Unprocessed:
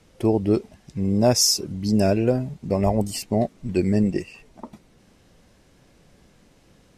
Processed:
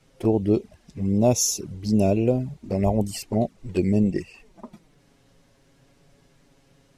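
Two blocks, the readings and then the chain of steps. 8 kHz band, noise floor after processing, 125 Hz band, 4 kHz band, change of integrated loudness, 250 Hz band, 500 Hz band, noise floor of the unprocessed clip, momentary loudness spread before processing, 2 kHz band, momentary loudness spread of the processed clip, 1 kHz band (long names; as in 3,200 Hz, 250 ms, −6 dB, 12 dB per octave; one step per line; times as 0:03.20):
−2.0 dB, −60 dBFS, −0.5 dB, −9.5 dB, −1.5 dB, −0.5 dB, −1.5 dB, −57 dBFS, 8 LU, −5.0 dB, 9 LU, −2.5 dB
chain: flanger swept by the level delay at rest 7.7 ms, full sweep at −16.5 dBFS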